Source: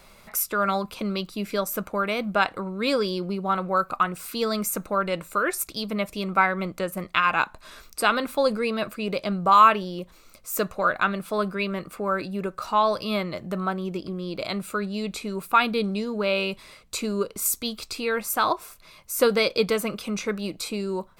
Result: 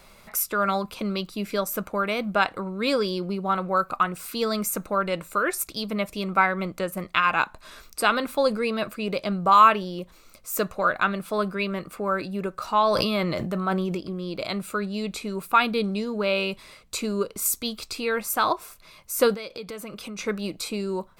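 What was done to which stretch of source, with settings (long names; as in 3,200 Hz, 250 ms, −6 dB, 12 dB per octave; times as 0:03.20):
0:12.82–0:13.95: level that may fall only so fast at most 22 dB per second
0:19.34–0:20.19: downward compressor 5 to 1, threshold −34 dBFS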